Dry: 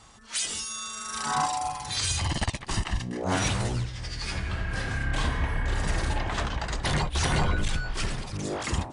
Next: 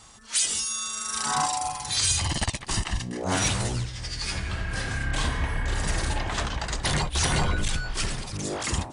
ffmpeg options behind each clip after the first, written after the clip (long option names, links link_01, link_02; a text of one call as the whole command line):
ffmpeg -i in.wav -af "highshelf=frequency=4600:gain=8.5" out.wav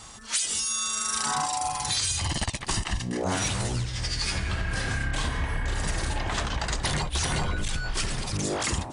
ffmpeg -i in.wav -af "acompressor=threshold=-30dB:ratio=6,volume=5.5dB" out.wav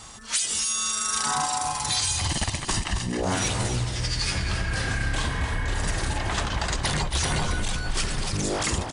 ffmpeg -i in.wav -af "aecho=1:1:273|546|819|1092|1365:0.335|0.141|0.0591|0.0248|0.0104,volume=1.5dB" out.wav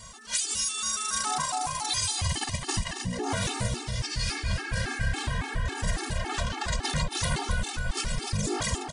ffmpeg -i in.wav -af "afftfilt=real='re*gt(sin(2*PI*3.6*pts/sr)*(1-2*mod(floor(b*sr/1024/230),2)),0)':imag='im*gt(sin(2*PI*3.6*pts/sr)*(1-2*mod(floor(b*sr/1024/230),2)),0)':win_size=1024:overlap=0.75" out.wav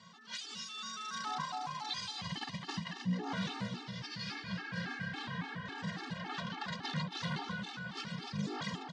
ffmpeg -i in.wav -af "highpass=frequency=150:width=0.5412,highpass=frequency=150:width=1.3066,equalizer=frequency=180:width_type=q:width=4:gain=10,equalizer=frequency=360:width_type=q:width=4:gain=-8,equalizer=frequency=620:width_type=q:width=4:gain=-8,equalizer=frequency=2400:width_type=q:width=4:gain=-4,lowpass=frequency=4500:width=0.5412,lowpass=frequency=4500:width=1.3066,volume=-7dB" out.wav